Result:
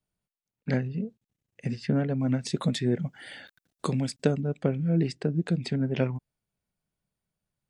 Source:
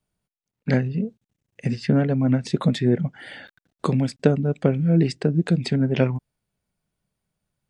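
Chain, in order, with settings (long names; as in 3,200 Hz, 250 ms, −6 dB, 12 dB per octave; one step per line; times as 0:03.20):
0:02.20–0:04.41: high-shelf EQ 4,300 Hz +11.5 dB
level −6.5 dB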